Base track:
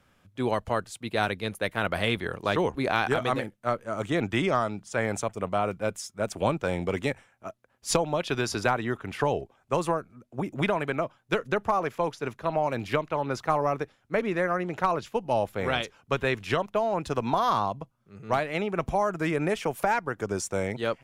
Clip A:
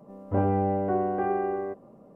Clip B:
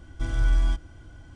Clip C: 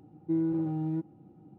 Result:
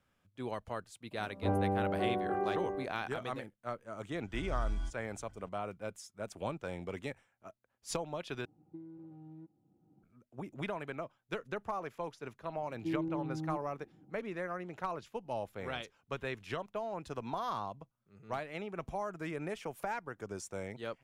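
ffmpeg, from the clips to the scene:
-filter_complex "[3:a]asplit=2[a][b];[0:a]volume=-12.5dB[c];[a]acompressor=threshold=-36dB:ratio=5:attack=55:release=931:knee=1:detection=rms[d];[b]lowpass=1.2k[e];[c]asplit=2[f][g];[f]atrim=end=8.454[h];[d]atrim=end=1.58,asetpts=PTS-STARTPTS,volume=-12.5dB[i];[g]atrim=start=10.026[j];[1:a]atrim=end=2.15,asetpts=PTS-STARTPTS,volume=-7dB,afade=t=in:d=0.004:c=hsin,afade=t=out:st=2.146:d=0.004:c=hsin,adelay=1110[k];[2:a]atrim=end=1.35,asetpts=PTS-STARTPTS,volume=-14dB,afade=t=in:d=0.004:c=hsin,afade=t=out:st=1.346:d=0.004:c=hsin,adelay=4140[l];[e]atrim=end=1.58,asetpts=PTS-STARTPTS,volume=-7.5dB,afade=t=in:d=0.004:c=hsin,afade=t=out:st=1.576:d=0.004:c=hsin,adelay=12560[m];[h][i]acrossfade=d=0.004:c1=hsin:c2=hsin[n];[n][j]acrossfade=d=0.004:c1=hsin:c2=hsin[o];[o][k][l][m]amix=inputs=4:normalize=0"

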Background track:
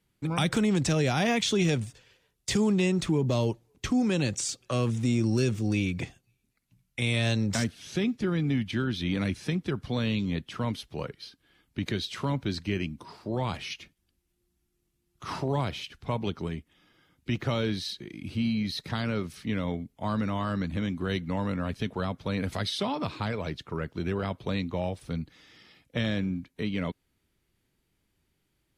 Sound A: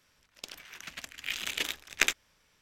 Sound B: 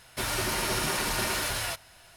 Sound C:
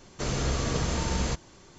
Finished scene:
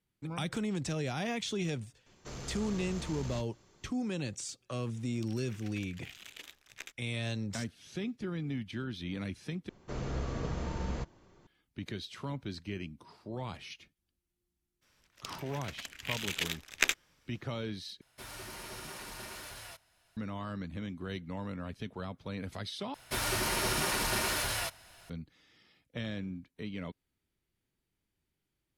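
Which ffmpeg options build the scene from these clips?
-filter_complex "[3:a]asplit=2[a][b];[1:a]asplit=2[c][d];[2:a]asplit=2[e][f];[0:a]volume=-9.5dB[g];[a]asoftclip=type=tanh:threshold=-25.5dB[h];[c]acompressor=threshold=-39dB:ratio=2:attack=1.2:release=574:knee=1:detection=peak[i];[b]lowpass=f=1.5k:p=1[j];[g]asplit=4[k][l][m][n];[k]atrim=end=9.694[o];[j]atrim=end=1.78,asetpts=PTS-STARTPTS,volume=-7dB[p];[l]atrim=start=11.466:end=18.014[q];[e]atrim=end=2.16,asetpts=PTS-STARTPTS,volume=-16dB[r];[m]atrim=start=20.166:end=22.944[s];[f]atrim=end=2.16,asetpts=PTS-STARTPTS,volume=-2.5dB[t];[n]atrim=start=25.096[u];[h]atrim=end=1.78,asetpts=PTS-STARTPTS,volume=-11.5dB,afade=t=in:d=0.004:c=hsin,afade=t=out:st=1.776:d=0.004:c=hsin,adelay=2060[v];[i]atrim=end=2.61,asetpts=PTS-STARTPTS,volume=-7dB,afade=t=in:d=0.004:c=hsin,afade=t=out:st=2.606:d=0.004:c=hsin,adelay=4790[w];[d]atrim=end=2.61,asetpts=PTS-STARTPTS,volume=-2dB,afade=t=in:d=0.02,afade=t=out:st=2.59:d=0.02,adelay=14810[x];[o][p]acrossfade=d=0.004:c1=hsin:c2=hsin[y];[y][q]acrossfade=d=0.004:c1=hsin:c2=hsin[z];[z][r]acrossfade=d=0.004:c1=hsin:c2=hsin[aa];[aa][s]acrossfade=d=0.004:c1=hsin:c2=hsin[ab];[ab][t]acrossfade=d=0.004:c1=hsin:c2=hsin[ac];[ac][u]acrossfade=d=0.004:c1=hsin:c2=hsin[ad];[ad][v][w][x]amix=inputs=4:normalize=0"

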